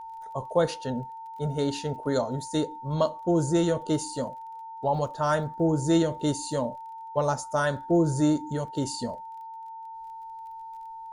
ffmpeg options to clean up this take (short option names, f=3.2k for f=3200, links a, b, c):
-af "adeclick=t=4,bandreject=f=900:w=30"